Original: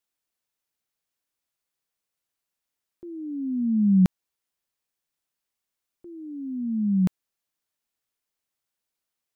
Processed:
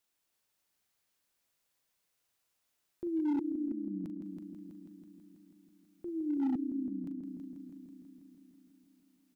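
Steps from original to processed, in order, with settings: doubling 40 ms -10.5 dB; inverted gate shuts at -27 dBFS, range -28 dB; multi-head delay 163 ms, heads first and second, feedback 66%, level -9 dB; overload inside the chain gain 30.5 dB; trim +3 dB

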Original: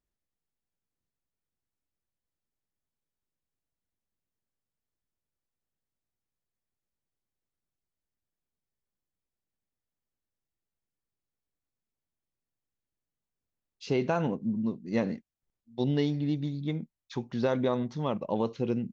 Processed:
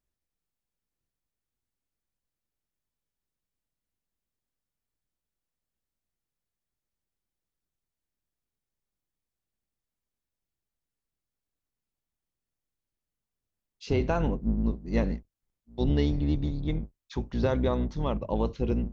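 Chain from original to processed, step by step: octave divider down 2 oct, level +2 dB

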